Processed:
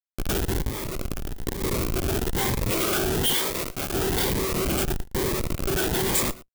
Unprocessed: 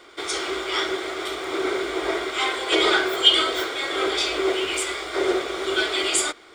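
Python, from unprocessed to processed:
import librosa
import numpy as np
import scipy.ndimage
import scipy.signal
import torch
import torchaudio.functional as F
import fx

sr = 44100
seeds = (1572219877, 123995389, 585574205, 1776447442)

y = fx.rattle_buzz(x, sr, strikes_db=-41.0, level_db=-20.0)
y = fx.schmitt(y, sr, flips_db=-21.0)
y = fx.quant_dither(y, sr, seeds[0], bits=10, dither='none')
y = y + 10.0 ** (-20.0 / 20.0) * np.pad(y, (int(113 * sr / 1000.0), 0))[:len(y)]
y = fx.over_compress(y, sr, threshold_db=-28.0, ratio=-0.5, at=(0.68, 1.61), fade=0.02)
y = fx.low_shelf(y, sr, hz=330.0, db=-10.5, at=(3.33, 3.94))
y = np.clip(10.0 ** (16.0 / 20.0) * y, -1.0, 1.0) / 10.0 ** (16.0 / 20.0)
y = fx.high_shelf(y, sr, hz=10000.0, db=12.0)
y = fx.notch_cascade(y, sr, direction='rising', hz=1.1)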